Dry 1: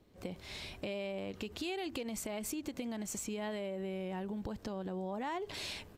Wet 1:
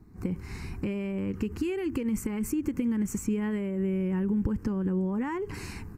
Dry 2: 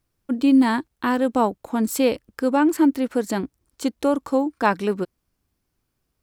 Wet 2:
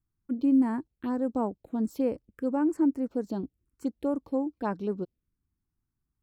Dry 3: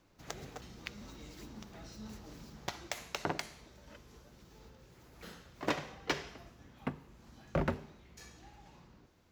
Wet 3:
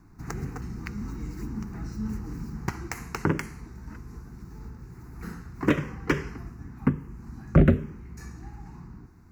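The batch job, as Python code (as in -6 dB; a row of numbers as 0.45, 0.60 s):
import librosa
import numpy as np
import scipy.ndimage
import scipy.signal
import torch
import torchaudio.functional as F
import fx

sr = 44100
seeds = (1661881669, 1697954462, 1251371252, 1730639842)

y = fx.tilt_shelf(x, sr, db=6.0, hz=800.0)
y = fx.env_phaser(y, sr, low_hz=550.0, high_hz=3700.0, full_db=-12.5)
y = y * 10.0 ** (-30 / 20.0) / np.sqrt(np.mean(np.square(y)))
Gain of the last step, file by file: +9.5, -11.5, +12.0 dB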